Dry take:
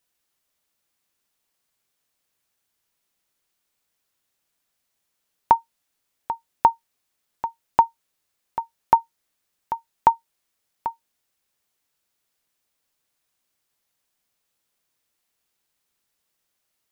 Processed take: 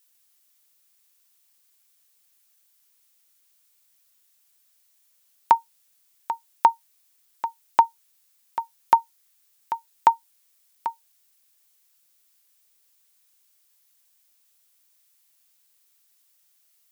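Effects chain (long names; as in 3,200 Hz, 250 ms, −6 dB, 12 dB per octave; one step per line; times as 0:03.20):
spectral tilt +3.5 dB per octave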